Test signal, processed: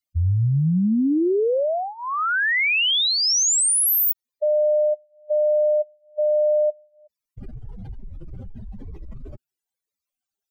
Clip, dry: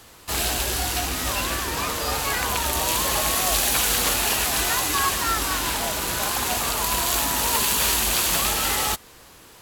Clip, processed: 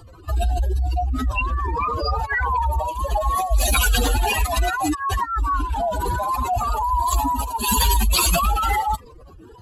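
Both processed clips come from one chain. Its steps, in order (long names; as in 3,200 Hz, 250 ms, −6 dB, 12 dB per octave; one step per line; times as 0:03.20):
expanding power law on the bin magnitudes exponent 3.7
phaser whose notches keep moving one way rising 1.1 Hz
level +6 dB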